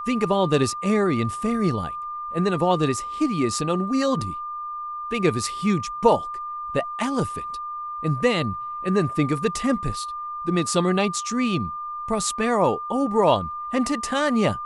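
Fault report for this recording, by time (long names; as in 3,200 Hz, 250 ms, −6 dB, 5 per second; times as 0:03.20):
whistle 1,200 Hz −29 dBFS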